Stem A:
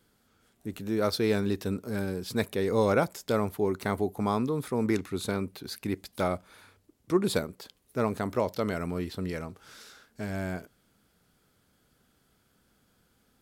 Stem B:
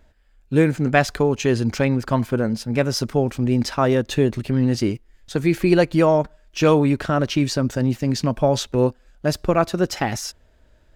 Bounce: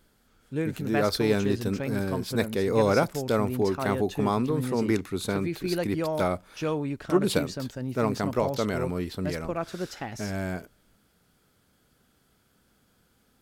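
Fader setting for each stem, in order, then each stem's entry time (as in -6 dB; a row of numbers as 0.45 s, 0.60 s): +2.0 dB, -13.0 dB; 0.00 s, 0.00 s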